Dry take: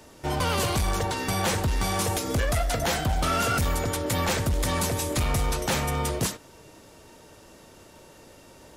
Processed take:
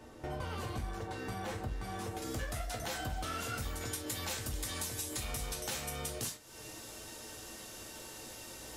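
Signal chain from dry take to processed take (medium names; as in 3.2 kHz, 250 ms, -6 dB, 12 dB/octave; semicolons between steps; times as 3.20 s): treble shelf 2.5 kHz -9.5 dB, from 2.22 s +3 dB, from 3.81 s +11 dB; compression 6:1, threshold -36 dBFS, peak gain reduction 18 dB; gated-style reverb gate 90 ms falling, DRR 2 dB; trim -3.5 dB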